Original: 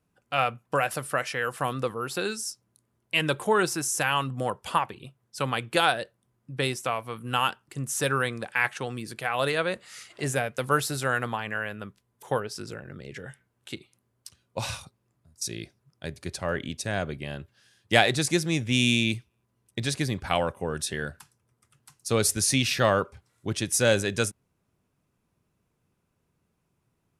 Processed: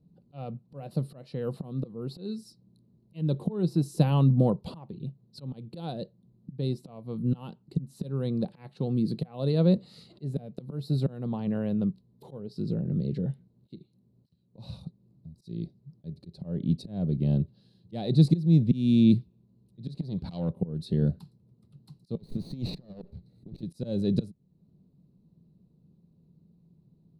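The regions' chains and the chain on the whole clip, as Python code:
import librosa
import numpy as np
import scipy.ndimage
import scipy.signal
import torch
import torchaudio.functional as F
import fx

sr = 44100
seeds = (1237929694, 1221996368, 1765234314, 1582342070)

y = fx.chain(x, sr, fx.peak_eq(hz=3200.0, db=8.5, octaves=3.0),
    fx.transformer_sat(knee_hz=2400.0), at=(19.97, 20.5))
y = fx.chain(y, sr, fx.lower_of_two(delay_ms=0.47),
    fx.high_shelf(hz=11000.0, db=-3.5),
    fx.over_compress(threshold_db=-34.0, ratio=-0.5), at=(22.17, 23.63))
y = fx.peak_eq(y, sr, hz=3400.0, db=-14.0, octaves=0.55)
y = fx.auto_swell(y, sr, attack_ms=500.0)
y = fx.curve_eq(y, sr, hz=(110.0, 170.0, 260.0, 510.0, 1000.0, 1600.0, 2400.0, 4000.0, 6100.0, 14000.0), db=(0, 13, 3, -4, -16, -29, -22, 3, -29, -22))
y = F.gain(torch.from_numpy(y), 7.5).numpy()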